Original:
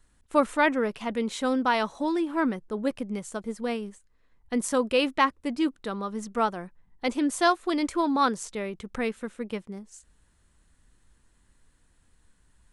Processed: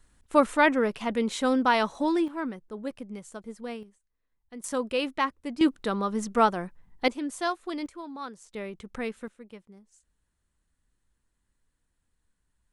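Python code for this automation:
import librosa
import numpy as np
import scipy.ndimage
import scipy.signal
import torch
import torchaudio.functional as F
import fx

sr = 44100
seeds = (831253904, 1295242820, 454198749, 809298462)

y = fx.gain(x, sr, db=fx.steps((0.0, 1.5), (2.28, -7.0), (3.83, -15.5), (4.64, -4.5), (5.61, 4.0), (7.08, -7.0), (7.86, -15.0), (8.54, -4.0), (9.28, -13.0)))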